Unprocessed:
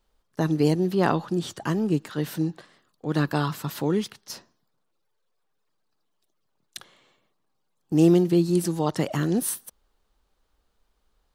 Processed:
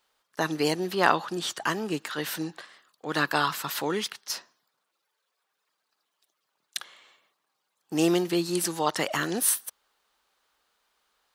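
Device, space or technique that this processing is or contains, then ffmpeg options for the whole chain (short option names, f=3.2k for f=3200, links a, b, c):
filter by subtraction: -filter_complex "[0:a]asplit=2[a][b];[b]lowpass=1.6k,volume=-1[c];[a][c]amix=inputs=2:normalize=0,volume=5dB"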